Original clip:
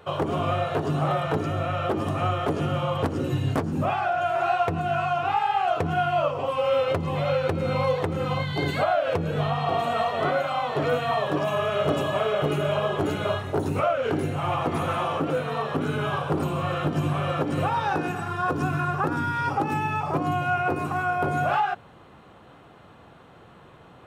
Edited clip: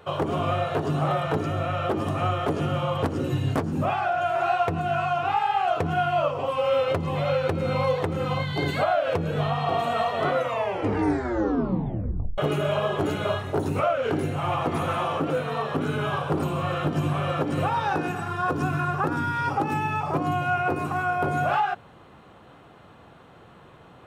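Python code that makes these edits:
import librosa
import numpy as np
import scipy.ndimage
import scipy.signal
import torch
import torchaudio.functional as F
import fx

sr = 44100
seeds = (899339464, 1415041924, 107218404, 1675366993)

y = fx.edit(x, sr, fx.tape_stop(start_s=10.27, length_s=2.11), tone=tone)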